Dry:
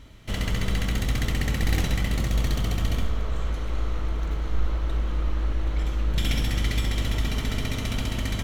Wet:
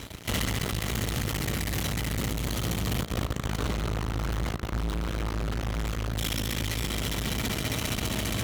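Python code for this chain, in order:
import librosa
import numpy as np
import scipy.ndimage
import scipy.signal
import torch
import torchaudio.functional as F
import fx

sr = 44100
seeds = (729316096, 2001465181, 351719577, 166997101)

p1 = fx.high_shelf(x, sr, hz=8000.0, db=10.0)
p2 = p1 + fx.echo_heads(p1, sr, ms=129, heads='first and second', feedback_pct=47, wet_db=-16, dry=0)
p3 = np.clip(p2, -10.0 ** (-22.0 / 20.0), 10.0 ** (-22.0 / 20.0))
p4 = fx.echo_filtered(p3, sr, ms=233, feedback_pct=80, hz=1200.0, wet_db=-9)
p5 = fx.fuzz(p4, sr, gain_db=40.0, gate_db=-47.0)
p6 = p4 + (p5 * librosa.db_to_amplitude(-6.5))
p7 = fx.rider(p6, sr, range_db=10, speed_s=0.5)
p8 = scipy.signal.sosfilt(scipy.signal.butter(2, 67.0, 'highpass', fs=sr, output='sos'), p7)
y = p8 * librosa.db_to_amplitude(-8.5)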